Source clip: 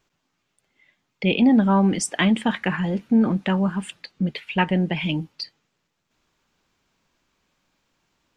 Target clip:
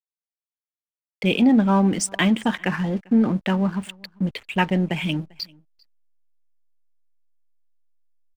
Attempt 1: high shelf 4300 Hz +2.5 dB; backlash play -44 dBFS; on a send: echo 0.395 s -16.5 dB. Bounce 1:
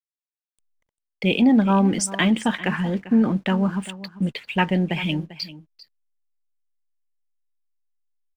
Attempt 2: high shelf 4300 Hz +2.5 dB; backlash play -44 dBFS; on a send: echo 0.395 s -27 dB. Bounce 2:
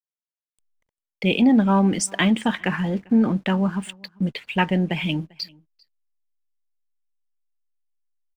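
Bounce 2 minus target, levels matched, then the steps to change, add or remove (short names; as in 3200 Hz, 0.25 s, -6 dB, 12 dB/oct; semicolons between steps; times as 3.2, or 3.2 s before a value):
backlash: distortion -9 dB
change: backlash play -34 dBFS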